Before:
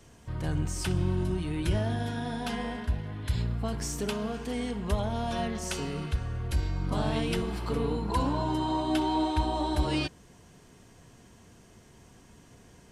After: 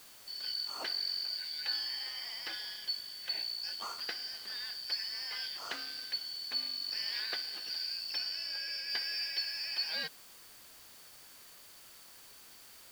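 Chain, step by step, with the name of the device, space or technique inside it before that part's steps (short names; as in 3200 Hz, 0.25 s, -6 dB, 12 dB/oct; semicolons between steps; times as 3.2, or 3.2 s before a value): split-band scrambled radio (four-band scrambler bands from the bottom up 4321; BPF 340–2800 Hz; white noise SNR 16 dB); 8.18–8.9 high shelf 9400 Hz -5 dB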